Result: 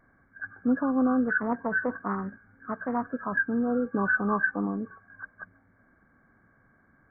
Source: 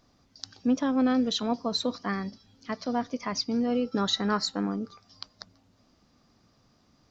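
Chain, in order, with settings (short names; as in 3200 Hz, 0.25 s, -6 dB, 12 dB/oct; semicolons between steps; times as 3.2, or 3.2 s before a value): nonlinear frequency compression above 1100 Hz 4:1; 1.28–3.06 Doppler distortion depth 0.23 ms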